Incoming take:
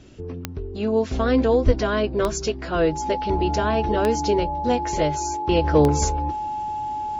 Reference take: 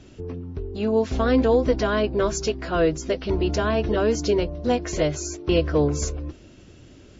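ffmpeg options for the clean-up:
ffmpeg -i in.wav -filter_complex "[0:a]adeclick=threshold=4,bandreject=frequency=850:width=30,asplit=3[link_01][link_02][link_03];[link_01]afade=type=out:start_time=1.65:duration=0.02[link_04];[link_02]highpass=frequency=140:width=0.5412,highpass=frequency=140:width=1.3066,afade=type=in:start_time=1.65:duration=0.02,afade=type=out:start_time=1.77:duration=0.02[link_05];[link_03]afade=type=in:start_time=1.77:duration=0.02[link_06];[link_04][link_05][link_06]amix=inputs=3:normalize=0,asetnsamples=nb_out_samples=441:pad=0,asendcmd='5.64 volume volume -4dB',volume=0dB" out.wav

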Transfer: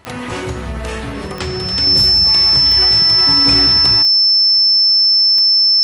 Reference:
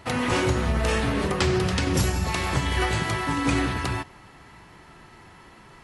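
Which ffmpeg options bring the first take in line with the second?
ffmpeg -i in.wav -af "adeclick=threshold=4,bandreject=frequency=5300:width=30,asetnsamples=nb_out_samples=441:pad=0,asendcmd='3.18 volume volume -4dB',volume=0dB" out.wav

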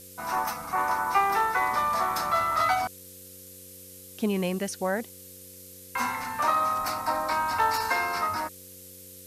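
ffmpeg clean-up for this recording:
ffmpeg -i in.wav -af "adeclick=threshold=4,bandreject=frequency=93.3:width_type=h:width=4,bandreject=frequency=186.6:width_type=h:width=4,bandreject=frequency=279.9:width_type=h:width=4,bandreject=frequency=373.2:width_type=h:width=4,bandreject=frequency=466.5:width_type=h:width=4,bandreject=frequency=520:width=30,afftdn=noise_reduction=27:noise_floor=-47" out.wav

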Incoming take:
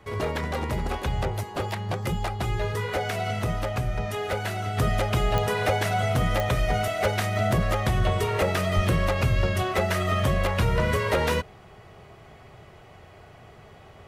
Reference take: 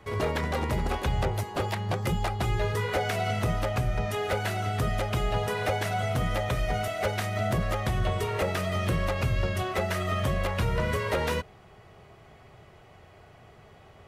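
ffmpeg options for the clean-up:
ffmpeg -i in.wav -filter_complex "[0:a]adeclick=threshold=4,asplit=3[link_01][link_02][link_03];[link_01]afade=type=out:start_time=8.75:duration=0.02[link_04];[link_02]highpass=frequency=140:width=0.5412,highpass=frequency=140:width=1.3066,afade=type=in:start_time=8.75:duration=0.02,afade=type=out:start_time=8.87:duration=0.02[link_05];[link_03]afade=type=in:start_time=8.87:duration=0.02[link_06];[link_04][link_05][link_06]amix=inputs=3:normalize=0,asetnsamples=nb_out_samples=441:pad=0,asendcmd='4.77 volume volume -4dB',volume=0dB" out.wav

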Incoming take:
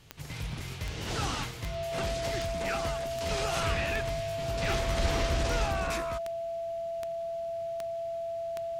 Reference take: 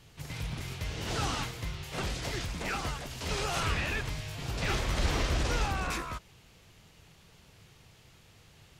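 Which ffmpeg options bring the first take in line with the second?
ffmpeg -i in.wav -af "adeclick=threshold=4,bandreject=frequency=670:width=30" out.wav

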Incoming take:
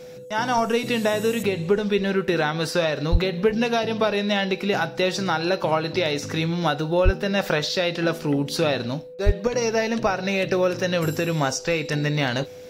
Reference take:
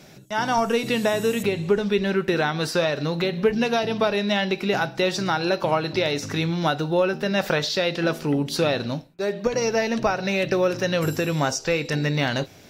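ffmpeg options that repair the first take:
ffmpeg -i in.wav -filter_complex "[0:a]bandreject=frequency=500:width=30,asplit=3[link_01][link_02][link_03];[link_01]afade=type=out:start_time=3.11:duration=0.02[link_04];[link_02]highpass=frequency=140:width=0.5412,highpass=frequency=140:width=1.3066,afade=type=in:start_time=3.11:duration=0.02,afade=type=out:start_time=3.23:duration=0.02[link_05];[link_03]afade=type=in:start_time=3.23:duration=0.02[link_06];[link_04][link_05][link_06]amix=inputs=3:normalize=0,asplit=3[link_07][link_08][link_09];[link_07]afade=type=out:start_time=7.04:duration=0.02[link_10];[link_08]highpass=frequency=140:width=0.5412,highpass=frequency=140:width=1.3066,afade=type=in:start_time=7.04:duration=0.02,afade=type=out:start_time=7.16:duration=0.02[link_11];[link_09]afade=type=in:start_time=7.16:duration=0.02[link_12];[link_10][link_11][link_12]amix=inputs=3:normalize=0,asplit=3[link_13][link_14][link_15];[link_13]afade=type=out:start_time=9.25:duration=0.02[link_16];[link_14]highpass=frequency=140:width=0.5412,highpass=frequency=140:width=1.3066,afade=type=in:start_time=9.25:duration=0.02,afade=type=out:start_time=9.37:duration=0.02[link_17];[link_15]afade=type=in:start_time=9.37:duration=0.02[link_18];[link_16][link_17][link_18]amix=inputs=3:normalize=0" out.wav

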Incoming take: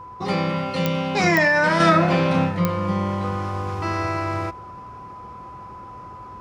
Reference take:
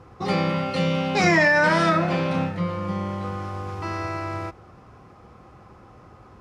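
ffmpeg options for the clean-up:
ffmpeg -i in.wav -af "adeclick=threshold=4,bandreject=frequency=1000:width=30,asetnsamples=nb_out_samples=441:pad=0,asendcmd='1.8 volume volume -4.5dB',volume=0dB" out.wav

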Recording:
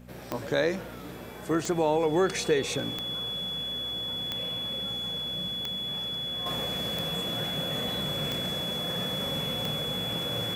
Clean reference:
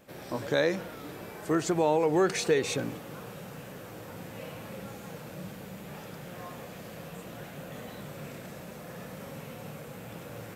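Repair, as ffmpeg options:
ffmpeg -i in.wav -af "adeclick=threshold=4,bandreject=frequency=60.7:width_type=h:width=4,bandreject=frequency=121.4:width_type=h:width=4,bandreject=frequency=182.1:width_type=h:width=4,bandreject=frequency=242.8:width_type=h:width=4,bandreject=frequency=3400:width=30,asetnsamples=nb_out_samples=441:pad=0,asendcmd='6.46 volume volume -8dB',volume=0dB" out.wav

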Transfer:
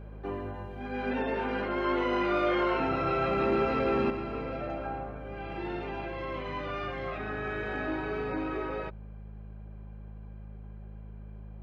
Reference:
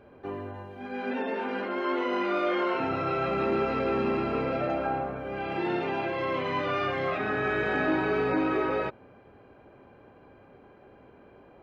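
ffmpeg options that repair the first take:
ffmpeg -i in.wav -af "bandreject=frequency=52.5:width_type=h:width=4,bandreject=frequency=105:width_type=h:width=4,bandreject=frequency=157.5:width_type=h:width=4,bandreject=frequency=210:width_type=h:width=4,asetnsamples=nb_out_samples=441:pad=0,asendcmd='4.1 volume volume 7dB',volume=0dB" out.wav

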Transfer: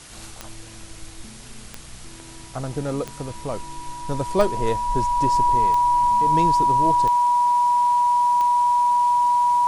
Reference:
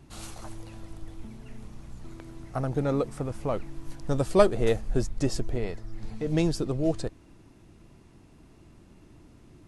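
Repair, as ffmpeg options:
ffmpeg -i in.wav -af "adeclick=threshold=4,bandreject=frequency=970:width=30,afwtdn=0.0079" out.wav

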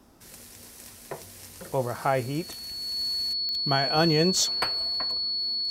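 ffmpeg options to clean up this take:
ffmpeg -i in.wav -af "adeclick=threshold=4,bandreject=frequency=4400:width=30" out.wav

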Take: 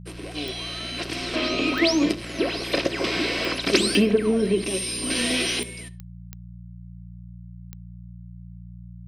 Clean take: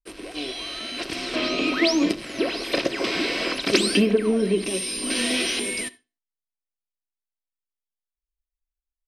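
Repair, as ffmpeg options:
ffmpeg -i in.wav -af "adeclick=threshold=4,bandreject=frequency=58.7:width_type=h:width=4,bandreject=frequency=117.4:width_type=h:width=4,bandreject=frequency=176.1:width_type=h:width=4,asetnsamples=nb_out_samples=441:pad=0,asendcmd='5.63 volume volume 11dB',volume=0dB" out.wav

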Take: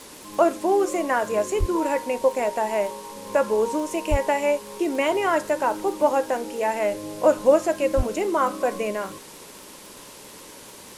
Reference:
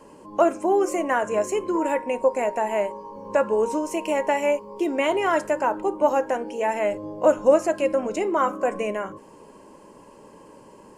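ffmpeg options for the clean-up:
ffmpeg -i in.wav -filter_complex "[0:a]adeclick=threshold=4,asplit=3[link_01][link_02][link_03];[link_01]afade=type=out:start_time=1.59:duration=0.02[link_04];[link_02]highpass=frequency=140:width=0.5412,highpass=frequency=140:width=1.3066,afade=type=in:start_time=1.59:duration=0.02,afade=type=out:start_time=1.71:duration=0.02[link_05];[link_03]afade=type=in:start_time=1.71:duration=0.02[link_06];[link_04][link_05][link_06]amix=inputs=3:normalize=0,asplit=3[link_07][link_08][link_09];[link_07]afade=type=out:start_time=4.1:duration=0.02[link_10];[link_08]highpass=frequency=140:width=0.5412,highpass=frequency=140:width=1.3066,afade=type=in:start_time=4.1:duration=0.02,afade=type=out:start_time=4.22:duration=0.02[link_11];[link_09]afade=type=in:start_time=4.22:duration=0.02[link_12];[link_10][link_11][link_12]amix=inputs=3:normalize=0,asplit=3[link_13][link_14][link_15];[link_13]afade=type=out:start_time=7.96:duration=0.02[link_16];[link_14]highpass=frequency=140:width=0.5412,highpass=frequency=140:width=1.3066,afade=type=in:start_time=7.96:duration=0.02,afade=type=out:start_time=8.08:duration=0.02[link_17];[link_15]afade=type=in:start_time=8.08:duration=0.02[link_18];[link_16][link_17][link_18]amix=inputs=3:normalize=0,afwtdn=0.0071" out.wav

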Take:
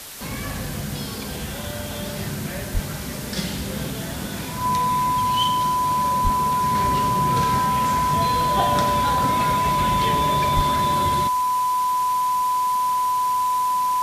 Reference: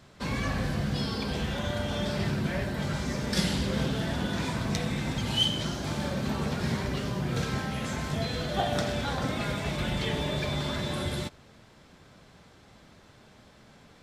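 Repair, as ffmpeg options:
ffmpeg -i in.wav -filter_complex "[0:a]bandreject=frequency=1000:width=30,asplit=3[link_01][link_02][link_03];[link_01]afade=type=out:start_time=2.73:duration=0.02[link_04];[link_02]highpass=frequency=140:width=0.5412,highpass=frequency=140:width=1.3066,afade=type=in:start_time=2.73:duration=0.02,afade=type=out:start_time=2.85:duration=0.02[link_05];[link_03]afade=type=in:start_time=2.85:duration=0.02[link_06];[link_04][link_05][link_06]amix=inputs=3:normalize=0,asplit=3[link_07][link_08][link_09];[link_07]afade=type=out:start_time=6.23:duration=0.02[link_10];[link_08]highpass=frequency=140:width=0.5412,highpass=frequency=140:width=1.3066,afade=type=in:start_time=6.23:duration=0.02,afade=type=out:start_time=6.35:duration=0.02[link_11];[link_09]afade=type=in:start_time=6.35:duration=0.02[link_12];[link_10][link_11][link_12]amix=inputs=3:normalize=0,asplit=3[link_13][link_14][link_15];[link_13]afade=type=out:start_time=10.55:duration=0.02[link_16];[link_14]highpass=frequency=140:width=0.5412,highpass=frequency=140:width=1.3066,afade=type=in:start_time=10.55:duration=0.02,afade=type=out:start_time=10.67:duration=0.02[link_17];[link_15]afade=type=in:start_time=10.67:duration=0.02[link_18];[link_16][link_17][link_18]amix=inputs=3:normalize=0,afwtdn=0.016,asetnsamples=nb_out_samples=441:pad=0,asendcmd='6.75 volume volume -5dB',volume=0dB" out.wav

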